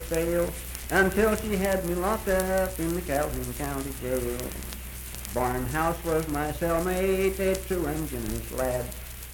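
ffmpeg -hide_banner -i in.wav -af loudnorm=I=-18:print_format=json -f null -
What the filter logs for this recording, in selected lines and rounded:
"input_i" : "-28.0",
"input_tp" : "-9.6",
"input_lra" : "2.9",
"input_thresh" : "-38.0",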